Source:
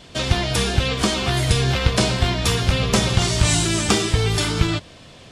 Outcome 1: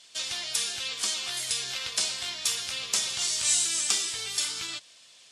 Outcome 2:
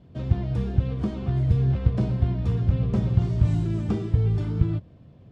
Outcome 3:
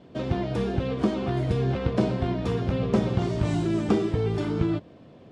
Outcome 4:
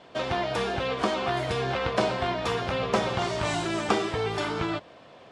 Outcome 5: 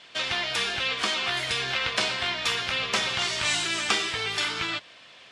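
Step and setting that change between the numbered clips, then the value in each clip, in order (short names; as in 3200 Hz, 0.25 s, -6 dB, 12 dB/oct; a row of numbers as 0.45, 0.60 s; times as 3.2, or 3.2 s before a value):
band-pass, frequency: 8000, 110, 290, 770, 2200 Hz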